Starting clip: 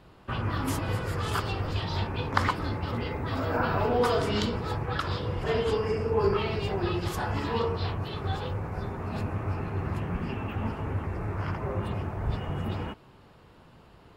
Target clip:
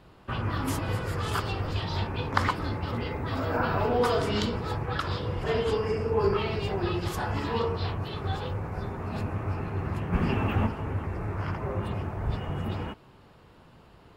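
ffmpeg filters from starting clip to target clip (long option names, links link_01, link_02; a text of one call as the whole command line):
ffmpeg -i in.wav -filter_complex "[0:a]asplit=3[link_01][link_02][link_03];[link_01]afade=type=out:start_time=10.12:duration=0.02[link_04];[link_02]acontrast=64,afade=type=in:start_time=10.12:duration=0.02,afade=type=out:start_time=10.65:duration=0.02[link_05];[link_03]afade=type=in:start_time=10.65:duration=0.02[link_06];[link_04][link_05][link_06]amix=inputs=3:normalize=0" out.wav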